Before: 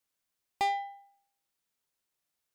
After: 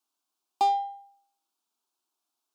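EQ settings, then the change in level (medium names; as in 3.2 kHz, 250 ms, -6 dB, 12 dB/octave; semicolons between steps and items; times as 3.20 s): high-pass 280 Hz; treble shelf 6.5 kHz -9.5 dB; static phaser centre 520 Hz, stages 6; +7.0 dB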